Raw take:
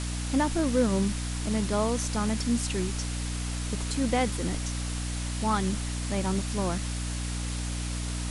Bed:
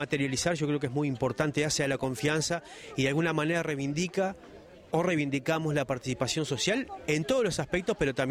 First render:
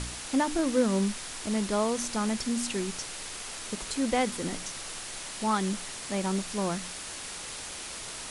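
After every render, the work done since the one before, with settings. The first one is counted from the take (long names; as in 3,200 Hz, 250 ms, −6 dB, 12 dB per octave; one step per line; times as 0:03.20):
hum removal 60 Hz, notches 5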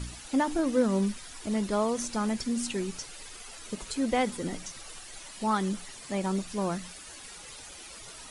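broadband denoise 11 dB, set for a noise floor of −40 dBFS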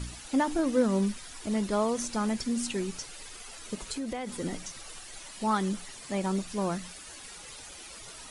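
0:03.92–0:04.38: downward compressor, threshold −31 dBFS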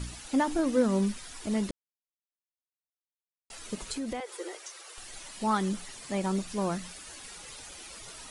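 0:01.71–0:03.50: silence
0:04.20–0:04.98: Chebyshev high-pass with heavy ripple 340 Hz, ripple 3 dB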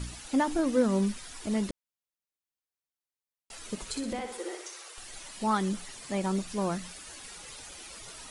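0:03.88–0:04.89: flutter between parallel walls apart 10.5 metres, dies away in 0.59 s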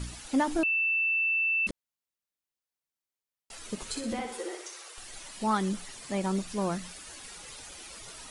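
0:00.63–0:01.67: beep over 2,660 Hz −24 dBFS
0:03.80–0:04.46: double-tracking delay 13 ms −5 dB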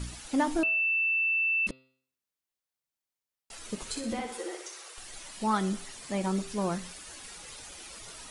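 hum removal 130.7 Hz, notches 38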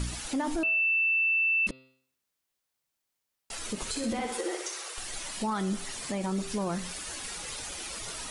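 in parallel at +2 dB: downward compressor, threshold −37 dBFS, peak gain reduction 14 dB
on the sum: brickwall limiter −22.5 dBFS, peak gain reduction 9 dB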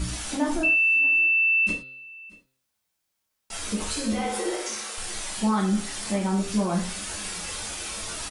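single-tap delay 628 ms −23 dB
reverb whose tail is shaped and stops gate 140 ms falling, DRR −3 dB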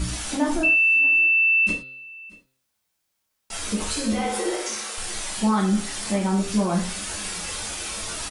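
level +2.5 dB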